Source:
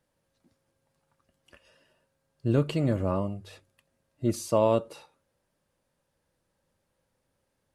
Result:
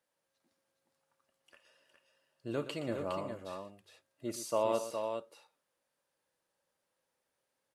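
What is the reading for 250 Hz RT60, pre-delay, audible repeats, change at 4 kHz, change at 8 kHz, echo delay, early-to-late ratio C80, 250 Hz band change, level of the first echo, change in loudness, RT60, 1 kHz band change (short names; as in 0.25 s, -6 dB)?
none, none, 3, -3.5 dB, -3.5 dB, 53 ms, none, -12.0 dB, -17.0 dB, -9.5 dB, none, -5.0 dB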